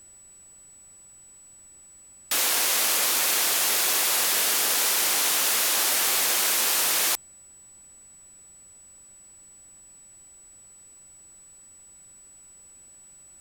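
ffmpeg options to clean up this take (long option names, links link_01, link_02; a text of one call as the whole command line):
ffmpeg -i in.wav -af "bandreject=frequency=7900:width=30,agate=range=-21dB:threshold=-43dB" out.wav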